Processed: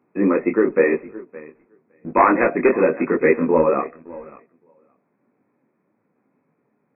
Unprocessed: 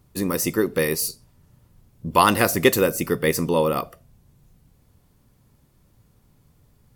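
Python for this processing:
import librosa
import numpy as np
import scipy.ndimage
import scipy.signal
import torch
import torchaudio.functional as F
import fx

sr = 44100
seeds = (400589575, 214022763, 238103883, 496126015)

p1 = np.minimum(x, 2.0 * 10.0 ** (-9.5 / 20.0) - x)
p2 = scipy.signal.sosfilt(scipy.signal.butter(4, 250.0, 'highpass', fs=sr, output='sos'), p1)
p3 = p2 + fx.echo_feedback(p2, sr, ms=564, feedback_pct=17, wet_db=-20, dry=0)
p4 = fx.leveller(p3, sr, passes=1)
p5 = fx.rider(p4, sr, range_db=10, speed_s=0.5)
p6 = p4 + F.gain(torch.from_numpy(p5), -1.5).numpy()
p7 = fx.brickwall_lowpass(p6, sr, high_hz=2600.0)
p8 = fx.low_shelf(p7, sr, hz=400.0, db=7.5)
p9 = fx.detune_double(p8, sr, cents=32)
y = F.gain(torch.from_numpy(p9), -2.5).numpy()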